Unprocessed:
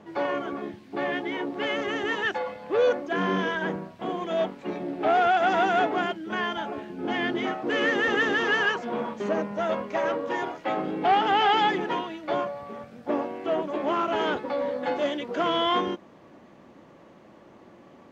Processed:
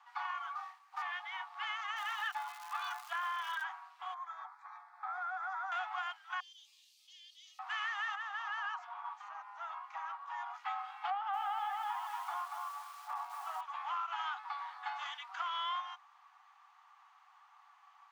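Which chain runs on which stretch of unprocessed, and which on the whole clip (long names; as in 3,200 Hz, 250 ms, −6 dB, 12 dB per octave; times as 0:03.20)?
0:00.55–0:01.02: running median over 15 samples + flutter between parallel walls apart 4.5 metres, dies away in 0.22 s + frequency shifter +69 Hz
0:01.96–0:03.62: comb filter 5.8 ms, depth 77% + surface crackle 390 per second −32 dBFS
0:04.14–0:05.72: bass and treble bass +7 dB, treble −8 dB + phaser with its sweep stopped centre 1,200 Hz, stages 4 + downward compressor 2 to 1, threshold −33 dBFS
0:06.40–0:07.59: inverse Chebyshev high-pass filter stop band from 1,600 Hz, stop band 50 dB + envelope flattener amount 50%
0:08.15–0:10.54: tilt shelving filter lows +7 dB, about 920 Hz + downward compressor 3 to 1, threshold −25 dBFS
0:11.10–0:13.61: spectral tilt −4.5 dB per octave + feedback echo at a low word length 235 ms, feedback 35%, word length 7 bits, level −5 dB
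whole clip: Chebyshev high-pass filter 750 Hz, order 8; parametric band 1,200 Hz +9.5 dB 0.3 octaves; downward compressor, threshold −27 dBFS; level −7.5 dB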